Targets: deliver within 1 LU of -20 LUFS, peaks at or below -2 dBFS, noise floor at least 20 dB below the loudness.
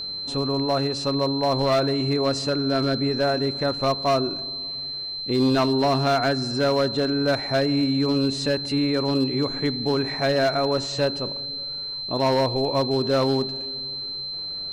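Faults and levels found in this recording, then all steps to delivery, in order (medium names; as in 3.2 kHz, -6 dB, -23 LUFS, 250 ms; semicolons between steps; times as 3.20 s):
clipped samples 1.6%; clipping level -15.0 dBFS; steady tone 4.1 kHz; tone level -29 dBFS; loudness -23.0 LUFS; peak level -15.0 dBFS; loudness target -20.0 LUFS
-> clip repair -15 dBFS; band-stop 4.1 kHz, Q 30; trim +3 dB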